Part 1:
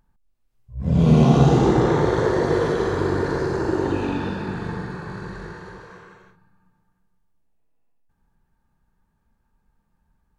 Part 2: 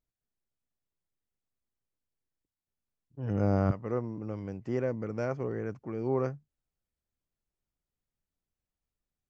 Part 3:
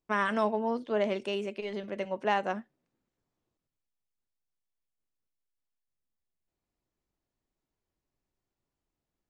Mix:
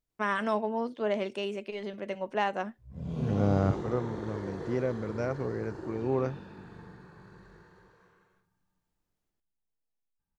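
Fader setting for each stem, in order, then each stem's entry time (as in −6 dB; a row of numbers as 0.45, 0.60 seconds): −19.5, +0.5, −1.0 decibels; 2.10, 0.00, 0.10 seconds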